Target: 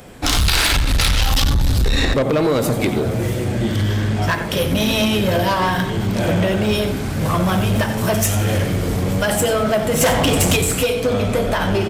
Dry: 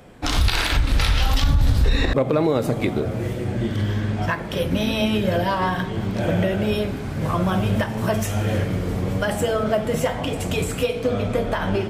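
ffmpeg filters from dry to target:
-filter_complex "[0:a]asettb=1/sr,asplit=3[a][b][c];[a]atrim=end=6.324[d];[b]atrim=start=6.32:end=6.78,asetpts=PTS-STARTPTS,afade=t=in:d=0.004:c=qsin,afade=t=out:st=0.456:d=0.004:c=qsin,equalizer=f=12k:w=4.8:g=-13[e];[c]atrim=start=6.776[f];[d][e]acrossfade=d=0.004:c1=hsin:c2=qsin[g];[g][f]acrossfade=d=0.004:c1=qsin:c2=hsin,aecho=1:1:90:0.251,asplit=3[h][i][j];[h]afade=t=out:st=10:d=0.02[k];[i]acontrast=65,afade=t=in:st=10:d=0.02,afade=t=out:st=10.55:d=0.02[l];[j]afade=t=in:st=10.55:d=0.02[m];[k][l][m]amix=inputs=3:normalize=0,asoftclip=type=tanh:threshold=-17dB,highshelf=f=4.4k:g=9.5,volume=5.5dB"

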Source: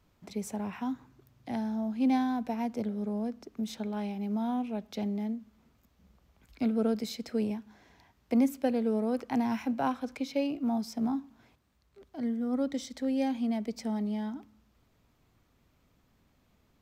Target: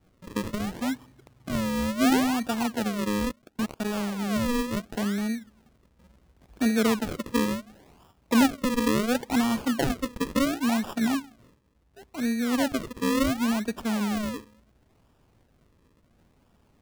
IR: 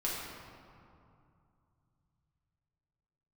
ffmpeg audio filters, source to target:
-filter_complex "[0:a]highshelf=f=7.2k:g=5.5,acrusher=samples=41:mix=1:aa=0.000001:lfo=1:lforange=41:lforate=0.71,asettb=1/sr,asplit=3[a][b][c];[a]atrim=end=3.084[d];[b]atrim=start=3.08:end=4.02,asetpts=PTS-STARTPTS,afade=t=in:d=0.004:c=qsin,afade=t=out:st=0.936:d=0.004:c=qsin,aeval=exprs='0.0562*(cos(1*acos(clip(val(0)/0.0562,-1,1)))-cos(1*PI/2))+0.01*(cos(7*acos(clip(val(0)/0.0562,-1,1)))-cos(7*PI/2))':c=same[e];[c]atrim=start=4.016[f];[d][e]acrossfade=d=0.004:c1=hsin:c2=qsin[g];[g][f]acrossfade=d=0.004:c1=qsin:c2=hsin,volume=5dB"

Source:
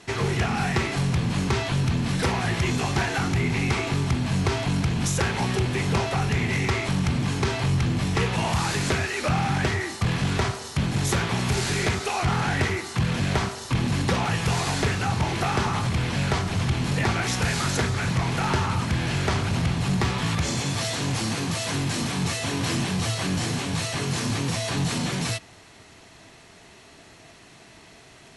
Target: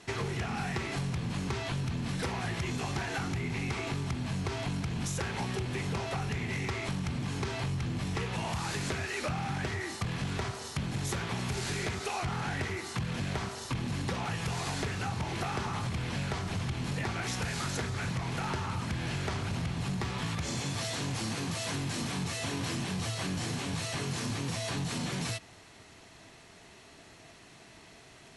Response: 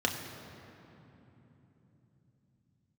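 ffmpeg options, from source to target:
-af "acompressor=threshold=-26dB:ratio=6,volume=-4.5dB"

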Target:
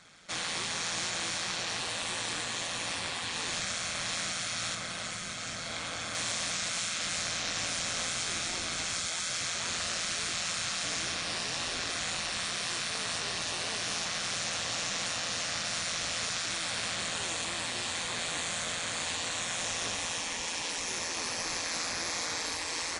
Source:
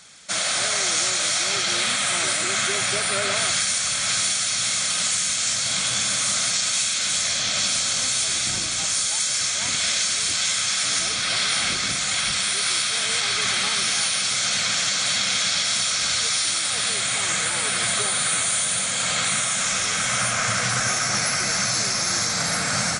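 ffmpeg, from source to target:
-af "asetnsamples=n=441:p=0,asendcmd='4.75 lowpass f 1000;6.15 lowpass f 2400',lowpass=f=1.9k:p=1,afftfilt=real='re*lt(hypot(re,im),0.0794)':imag='im*lt(hypot(re,im),0.0794)':win_size=1024:overlap=0.75,tremolo=f=170:d=0.571"

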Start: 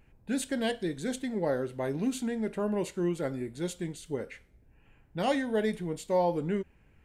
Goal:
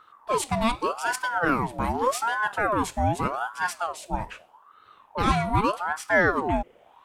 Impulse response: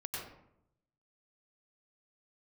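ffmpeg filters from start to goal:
-filter_complex "[0:a]asettb=1/sr,asplit=3[a][b][c];[a]atrim=end=0.954[d];[b]atrim=start=0.95:end=3.2,asetpts=PTS-STARTPTS,afade=t=in:d=0.004:c=qsin,afade=t=out:st=2.246:d=0.004:c=qsin,highshelf=f=6.3k:g=4.5[e];[c]atrim=start=3.196[f];[d][e]acrossfade=d=0.004:c1=hsin:c2=qsin[g];[g][f]acrossfade=d=0.004:c1=qsin:c2=hsin,aeval=exprs='val(0)*sin(2*PI*850*n/s+850*0.5/0.83*sin(2*PI*0.83*n/s))':c=same,volume=8.5dB"

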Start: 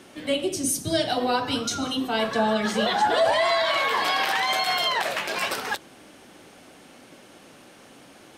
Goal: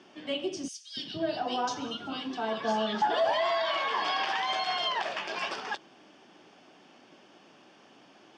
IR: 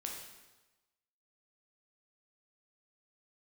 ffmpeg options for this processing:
-filter_complex "[0:a]highpass=200,equalizer=f=260:t=q:w=4:g=-4,equalizer=f=510:t=q:w=4:g=-7,equalizer=f=1.4k:t=q:w=4:g=-4,equalizer=f=2.1k:t=q:w=4:g=-6,lowpass=f=5.3k:w=0.5412,lowpass=f=5.3k:w=1.3066,bandreject=f=4k:w=5.5,asettb=1/sr,asplit=3[a][b][c];[a]atrim=end=0.684[d];[b]atrim=start=0.68:end=3.02,asetpts=PTS-STARTPTS,afade=t=in:d=0.004:c=qsin,afade=t=out:st=2.336:d=0.004:c=qsin,acrossover=split=2200[e][f];[e]adelay=290[g];[g][f]amix=inputs=2:normalize=0,atrim=end_sample=103194[h];[c]atrim=start=3.016[i];[d][h]acrossfade=d=0.004:c1=hsin:c2=qsin[j];[j][i]acrossfade=d=0.004:c1=qsin:c2=hsin,volume=-4dB"

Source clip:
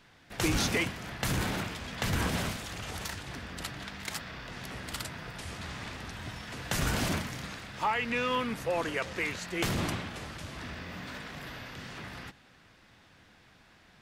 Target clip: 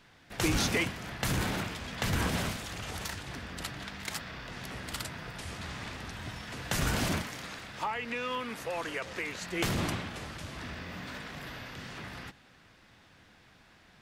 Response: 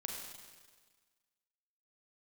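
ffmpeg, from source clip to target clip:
-filter_complex "[0:a]asettb=1/sr,asplit=3[a][b][c];[a]atrim=end=7.224[d];[b]atrim=start=7.22:end=9.41,asetpts=PTS-STARTPTS,afade=t=in:d=0.004:c=qsin,afade=t=out:st=2.186:d=0.004:c=qsin,acrossover=split=260|770[e][f][g];[e]acompressor=threshold=-50dB:ratio=4[h];[f]acompressor=threshold=-39dB:ratio=4[i];[g]acompressor=threshold=-34dB:ratio=4[j];[h][i][j]amix=inputs=3:normalize=0[k];[c]atrim=start=9.406[l];[d][k]acrossfade=d=0.004:c1=hsin:c2=qsin[m];[m][l]acrossfade=d=0.004:c1=qsin:c2=hsin"

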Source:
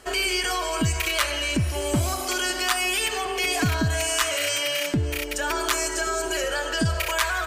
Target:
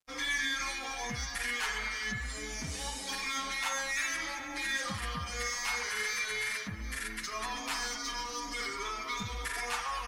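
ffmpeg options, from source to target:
-filter_complex "[0:a]lowshelf=f=100:g=-6,asplit=2[a][b];[b]aeval=exprs='0.0596*(abs(mod(val(0)/0.0596+3,4)-2)-1)':c=same,volume=-6.5dB[c];[a][c]amix=inputs=2:normalize=0,equalizer=f=610:w=0.55:g=-14,acrossover=split=320|3600[d][e][f];[d]alimiter=level_in=5.5dB:limit=-24dB:level=0:latency=1,volume=-5.5dB[g];[e]aecho=1:1:40|96|174.4|284.2|437.8:0.631|0.398|0.251|0.158|0.1[h];[f]asoftclip=type=tanh:threshold=-26.5dB[i];[g][h][i]amix=inputs=3:normalize=0,acrusher=bits=6:mix=0:aa=0.000001,asetrate=32667,aresample=44100,afftdn=nr=18:nf=-46,asplit=2[j][k];[k]adelay=6.6,afreqshift=2.8[l];[j][l]amix=inputs=2:normalize=1,volume=-5dB"

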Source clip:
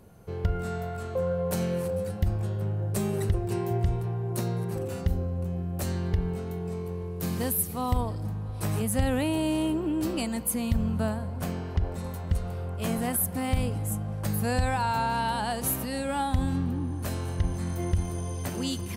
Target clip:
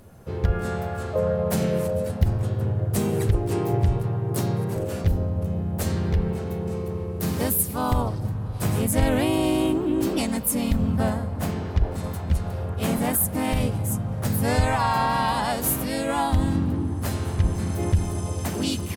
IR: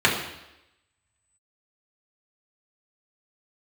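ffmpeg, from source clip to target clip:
-filter_complex "[0:a]asplit=3[a][b][c];[b]asetrate=37084,aresample=44100,atempo=1.18921,volume=-7dB[d];[c]asetrate=52444,aresample=44100,atempo=0.840896,volume=-5dB[e];[a][d][e]amix=inputs=3:normalize=0,volume=3dB"

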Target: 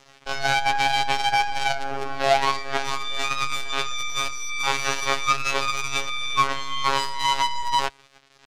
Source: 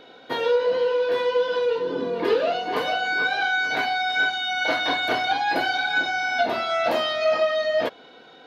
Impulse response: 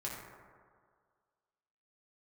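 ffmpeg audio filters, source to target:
-af "acrusher=bits=4:dc=4:mix=0:aa=0.000001,bandreject=f=300.6:t=h:w=4,bandreject=f=601.2:t=h:w=4,afftfilt=real='hypot(re,im)*cos(PI*b)':imag='0':win_size=2048:overlap=0.75,lowpass=2.9k,asetrate=70004,aresample=44100,atempo=0.629961,volume=5dB"

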